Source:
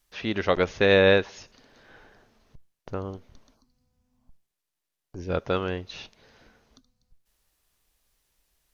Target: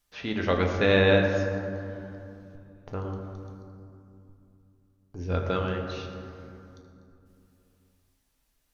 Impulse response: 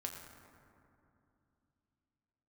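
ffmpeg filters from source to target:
-filter_complex "[0:a]equalizer=frequency=170:width_type=o:width=0.77:gain=3[link_01];[1:a]atrim=start_sample=2205[link_02];[link_01][link_02]afir=irnorm=-1:irlink=0"

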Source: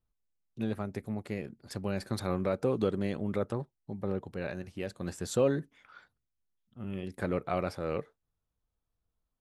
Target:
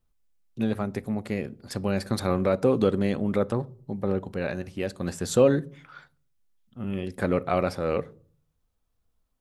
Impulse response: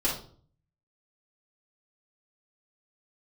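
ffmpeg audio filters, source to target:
-filter_complex "[0:a]asplit=2[link_01][link_02];[1:a]atrim=start_sample=2205,lowshelf=frequency=430:gain=7.5[link_03];[link_02][link_03]afir=irnorm=-1:irlink=0,volume=-29dB[link_04];[link_01][link_04]amix=inputs=2:normalize=0,volume=6.5dB"

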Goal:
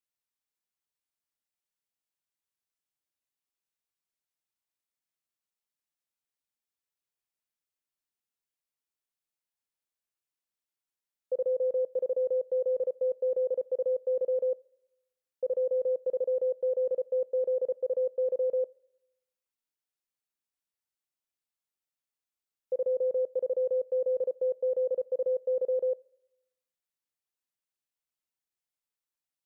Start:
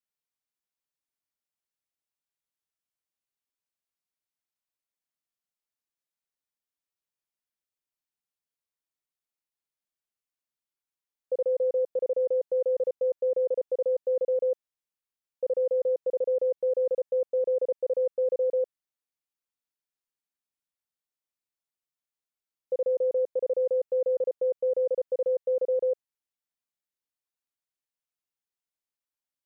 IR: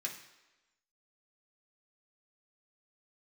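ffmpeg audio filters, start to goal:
-filter_complex "[0:a]asplit=2[link_01][link_02];[1:a]atrim=start_sample=2205,lowshelf=frequency=320:gain=-10.5[link_03];[link_02][link_03]afir=irnorm=-1:irlink=0,volume=-12.5dB[link_04];[link_01][link_04]amix=inputs=2:normalize=0,volume=-2.5dB"

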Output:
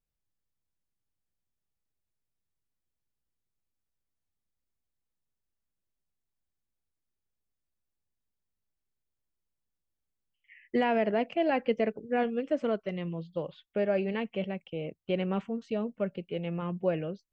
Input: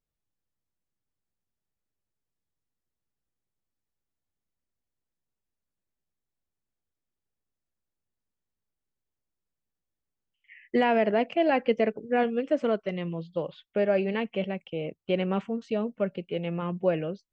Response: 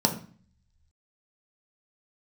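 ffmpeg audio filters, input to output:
-af "lowshelf=frequency=120:gain=6,volume=-4dB"

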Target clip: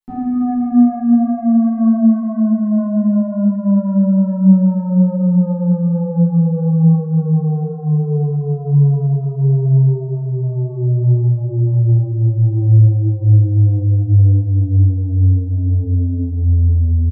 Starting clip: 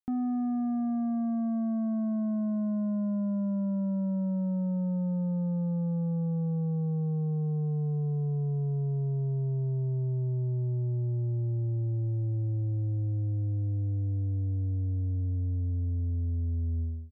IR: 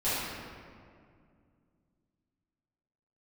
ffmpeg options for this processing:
-filter_complex "[0:a]asplit=2[link_01][link_02];[link_02]adelay=489.8,volume=-10dB,highshelf=frequency=4000:gain=-11[link_03];[link_01][link_03]amix=inputs=2:normalize=0[link_04];[1:a]atrim=start_sample=2205[link_05];[link_04][link_05]afir=irnorm=-1:irlink=0,volume=2dB"

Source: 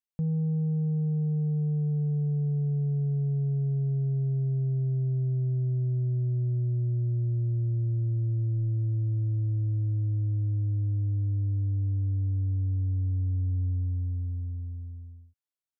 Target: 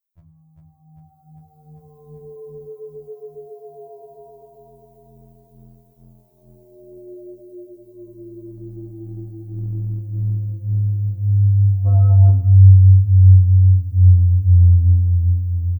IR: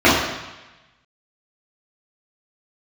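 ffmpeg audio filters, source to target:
-filter_complex "[0:a]aemphasis=mode=production:type=bsi,aecho=1:1:3:0.84,asplit=2[link_01][link_02];[link_02]aecho=0:1:397|794|1191|1588|1985|2382|2779|3176:0.708|0.411|0.238|0.138|0.0801|0.0465|0.027|0.0156[link_03];[link_01][link_03]amix=inputs=2:normalize=0,dynaudnorm=framelen=180:gausssize=17:maxgain=14dB,lowshelf=frequency=150:width_type=q:width=3:gain=11,asettb=1/sr,asplit=3[link_04][link_05][link_06];[link_04]atrim=end=11.874[link_07];[link_05]atrim=start=11.87:end=12.3,asetpts=PTS-STARTPTS,afade=type=in:duration=0.004:curve=qsin,afade=type=out:start_time=0.426:duration=0.004:curve=qsin,acontrast=57[link_08];[link_06]atrim=start=12.296[link_09];[link_07][link_08]acrossfade=duration=0.004:curve1=hsin:curve2=qsin[link_10];[link_10][link_09]acrossfade=duration=0.004:curve1=qsin:curve2=hsin,asplit=2[link_11][link_12];[1:a]atrim=start_sample=2205[link_13];[link_12][link_13]afir=irnorm=-1:irlink=0,volume=-35dB[link_14];[link_11][link_14]amix=inputs=2:normalize=0,afftfilt=real='re*2*eq(mod(b,4),0)':imag='im*2*eq(mod(b,4),0)':win_size=2048:overlap=0.75,volume=-6dB"

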